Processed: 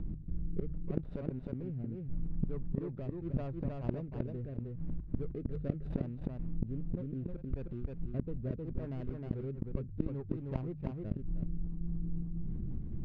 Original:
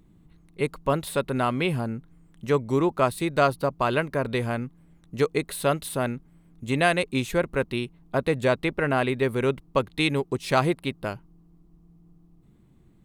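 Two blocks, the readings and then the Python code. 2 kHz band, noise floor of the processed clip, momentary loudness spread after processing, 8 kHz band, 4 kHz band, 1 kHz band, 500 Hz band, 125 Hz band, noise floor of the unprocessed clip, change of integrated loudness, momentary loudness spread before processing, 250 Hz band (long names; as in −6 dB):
−33.0 dB, −45 dBFS, 4 LU, below −40 dB, below −35 dB, −28.5 dB, −19.0 dB, −6.0 dB, −58 dBFS, −14.0 dB, 9 LU, −10.0 dB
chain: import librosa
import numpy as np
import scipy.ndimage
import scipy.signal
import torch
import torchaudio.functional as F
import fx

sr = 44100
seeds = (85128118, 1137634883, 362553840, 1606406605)

y = scipy.signal.medfilt(x, 41)
y = fx.riaa(y, sr, side='playback')
y = fx.step_gate(y, sr, bpm=108, pattern='x.xxxx.xxx.xx', floor_db=-24.0, edge_ms=4.5)
y = fx.hum_notches(y, sr, base_hz=50, count=3)
y = fx.gate_flip(y, sr, shuts_db=-22.0, range_db=-30)
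y = fx.rotary_switch(y, sr, hz=0.75, then_hz=5.0, switch_at_s=11.02)
y = fx.air_absorb(y, sr, metres=130.0)
y = y + 10.0 ** (-5.0 / 20.0) * np.pad(y, (int(312 * sr / 1000.0), 0))[:len(y)]
y = fx.env_flatten(y, sr, amount_pct=50)
y = F.gain(torch.from_numpy(y), 2.0).numpy()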